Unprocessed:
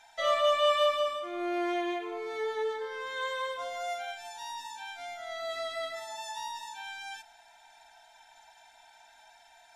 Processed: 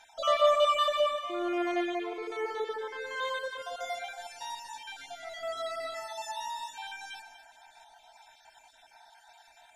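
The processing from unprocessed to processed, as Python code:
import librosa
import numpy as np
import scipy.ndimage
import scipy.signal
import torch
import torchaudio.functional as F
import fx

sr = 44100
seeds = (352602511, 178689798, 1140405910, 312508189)

y = fx.spec_dropout(x, sr, seeds[0], share_pct=35)
y = fx.peak_eq(y, sr, hz=1900.0, db=-2.5, octaves=0.27)
y = fx.echo_alternate(y, sr, ms=119, hz=2000.0, feedback_pct=59, wet_db=-7)
y = F.gain(torch.from_numpy(y), 1.5).numpy()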